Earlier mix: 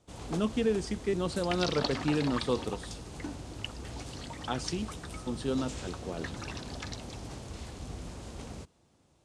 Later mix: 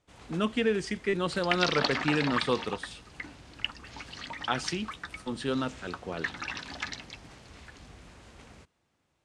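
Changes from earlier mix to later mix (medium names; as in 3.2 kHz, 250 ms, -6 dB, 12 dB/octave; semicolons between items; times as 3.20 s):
first sound -10.5 dB; master: add peaking EQ 1.9 kHz +10.5 dB 1.8 oct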